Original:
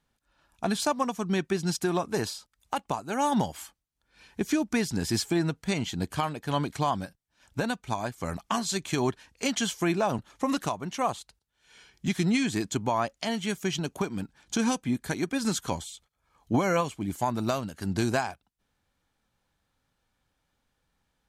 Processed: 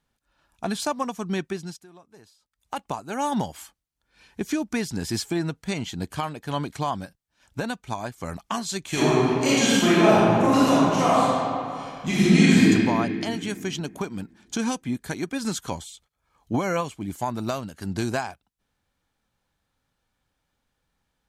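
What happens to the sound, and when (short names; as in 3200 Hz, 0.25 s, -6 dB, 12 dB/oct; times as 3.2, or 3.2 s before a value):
1.41–2.81 dip -22.5 dB, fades 0.43 s linear
8.88–12.67 reverb throw, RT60 2.5 s, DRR -10 dB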